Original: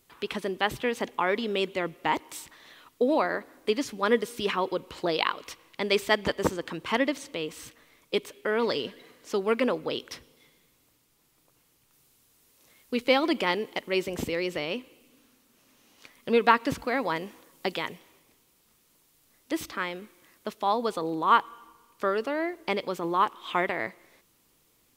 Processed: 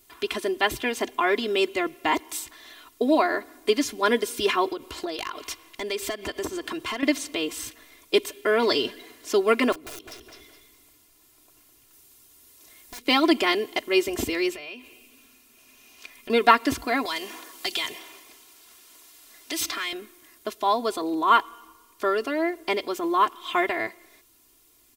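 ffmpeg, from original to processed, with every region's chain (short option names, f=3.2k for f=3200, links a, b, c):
-filter_complex "[0:a]asettb=1/sr,asplit=3[a][b][c];[a]atrim=end=4.694[d];[b]atrim=start=4.69:end=7.03,asetpts=PTS-STARTPTS,afade=t=in:d=0.004:c=qsin,afade=t=out:st=2.336:d=0.004:c=qsin,acompressor=threshold=-32dB:ratio=5:attack=3.2:release=140:knee=1:detection=peak,asoftclip=type=hard:threshold=-26dB[e];[c]atrim=start=7.026[f];[d][e]acrossfade=d=0.004:c1=hsin:c2=qsin[g];[g][f]acrossfade=d=0.004:c1=qsin:c2=hsin,asettb=1/sr,asplit=3[h][i][j];[h]atrim=end=9.724[k];[i]atrim=start=9.72:end=13.08,asetpts=PTS-STARTPTS,afade=t=in:d=0.004:c=qsin,afade=t=out:st=3.356:d=0.004:c=qsin,aeval=exprs='(mod(18.8*val(0)+1,2)-1)/18.8':c=same,asplit=2[l][m];[m]adelay=208,lowpass=f=3.7k:p=1,volume=-7.5dB,asplit=2[n][o];[o]adelay=208,lowpass=f=3.7k:p=1,volume=0.26,asplit=2[p][q];[q]adelay=208,lowpass=f=3.7k:p=1,volume=0.26[r];[l][n][p][r]amix=inputs=4:normalize=0,atrim=end_sample=148176,acompressor=threshold=-51dB:ratio=2.5:attack=3.2:release=140:knee=1:detection=peak[s];[j]atrim=start=13.076[t];[k][s]acrossfade=d=0.004:c1=hsin:c2=qsin[u];[u][t]acrossfade=d=0.004:c1=qsin:c2=hsin,asettb=1/sr,asplit=3[v][w][x];[v]atrim=end=14.524[y];[w]atrim=start=14.52:end=16.3,asetpts=PTS-STARTPTS,afade=t=in:d=0.004:c=qsin,afade=t=out:st=1.776:d=0.004:c=qsin,equalizer=f=2.5k:t=o:w=0.23:g=10,bandreject=f=310:w=5.9,acompressor=threshold=-41dB:ratio=4:attack=3.2:release=140:knee=1:detection=peak[z];[x]atrim=start=16.296[aa];[y][z]acrossfade=d=0.004:c1=hsin:c2=qsin[ab];[ab][aa]acrossfade=d=0.004:c1=qsin:c2=hsin,asettb=1/sr,asplit=3[ac][ad][ae];[ac]atrim=end=17.054[af];[ad]atrim=start=17.05:end=19.93,asetpts=PTS-STARTPTS,afade=t=in:d=0.004:c=qsin,afade=t=out:st=2.876:d=0.004:c=qsin,acrossover=split=140|3000[ag][ah][ai];[ah]acompressor=threshold=-43dB:ratio=4:attack=3.2:release=140:knee=2.83:detection=peak[aj];[ag][aj][ai]amix=inputs=3:normalize=0,asplit=2[ak][al];[al]highpass=f=720:p=1,volume=16dB,asoftclip=type=tanh:threshold=-17.5dB[am];[ak][am]amix=inputs=2:normalize=0,lowpass=f=5k:p=1,volume=-6dB[an];[ae]atrim=start=19.926[ao];[af][an]acrossfade=d=0.004:c1=hsin:c2=qsin[ap];[ap][ao]acrossfade=d=0.004:c1=qsin:c2=hsin,highshelf=f=4.7k:g=6.5,aecho=1:1:2.9:0.85,dynaudnorm=f=570:g=21:m=3dB,volume=1dB"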